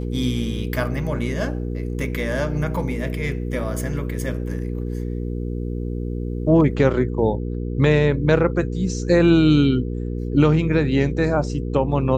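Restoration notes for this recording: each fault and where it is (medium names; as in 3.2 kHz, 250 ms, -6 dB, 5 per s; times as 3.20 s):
hum 60 Hz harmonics 8 -26 dBFS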